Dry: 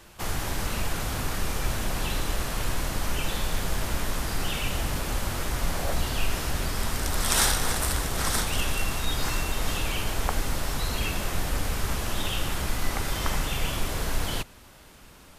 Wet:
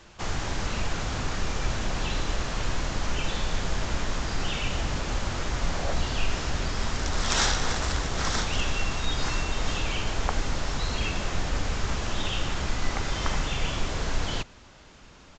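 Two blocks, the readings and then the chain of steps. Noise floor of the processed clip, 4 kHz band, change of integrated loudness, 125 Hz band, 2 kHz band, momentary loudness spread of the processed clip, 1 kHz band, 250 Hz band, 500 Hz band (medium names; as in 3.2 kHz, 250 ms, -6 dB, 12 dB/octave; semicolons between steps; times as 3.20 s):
-51 dBFS, 0.0 dB, -1.0 dB, 0.0 dB, 0.0 dB, 3 LU, 0.0 dB, 0.0 dB, 0.0 dB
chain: resampled via 16 kHz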